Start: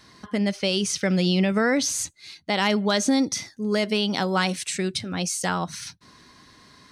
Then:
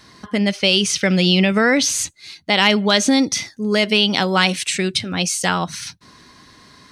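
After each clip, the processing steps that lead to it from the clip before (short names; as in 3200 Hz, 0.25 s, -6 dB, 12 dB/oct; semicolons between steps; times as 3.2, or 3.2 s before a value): dynamic EQ 2800 Hz, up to +7 dB, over -41 dBFS, Q 1.2; gain +5 dB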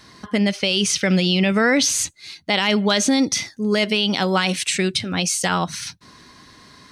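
limiter -8 dBFS, peak gain reduction 7 dB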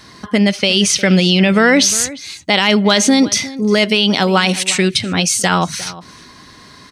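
outdoor echo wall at 61 m, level -17 dB; gain +6 dB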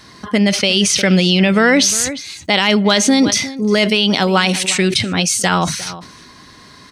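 sustainer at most 77 dB/s; gain -1 dB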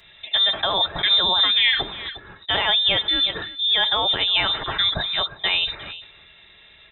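inverted band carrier 3800 Hz; notch comb 250 Hz; gain -5.5 dB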